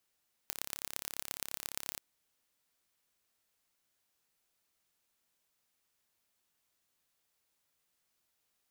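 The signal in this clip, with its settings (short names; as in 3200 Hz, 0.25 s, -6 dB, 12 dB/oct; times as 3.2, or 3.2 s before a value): pulse train 34.5/s, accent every 4, -8 dBFS 1.48 s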